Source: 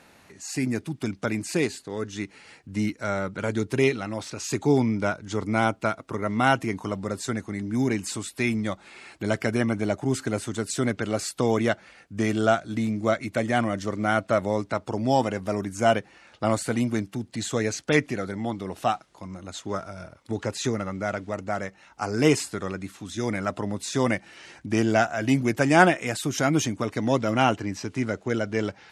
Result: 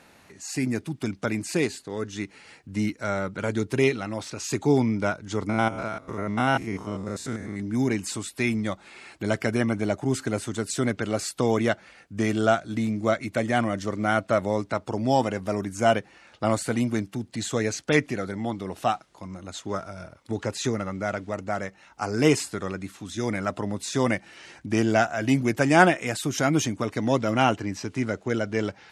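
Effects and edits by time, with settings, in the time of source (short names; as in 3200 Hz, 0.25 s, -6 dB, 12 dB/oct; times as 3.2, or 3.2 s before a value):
5.49–7.6 stepped spectrum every 0.1 s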